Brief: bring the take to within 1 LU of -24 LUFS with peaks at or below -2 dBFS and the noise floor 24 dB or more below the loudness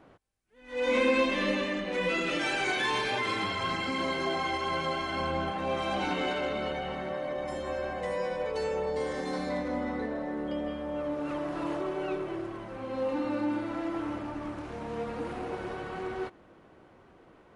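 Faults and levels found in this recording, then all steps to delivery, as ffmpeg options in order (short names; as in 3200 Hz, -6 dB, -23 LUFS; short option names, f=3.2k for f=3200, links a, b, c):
loudness -31.5 LUFS; peak -14.5 dBFS; loudness target -24.0 LUFS
-> -af "volume=7.5dB"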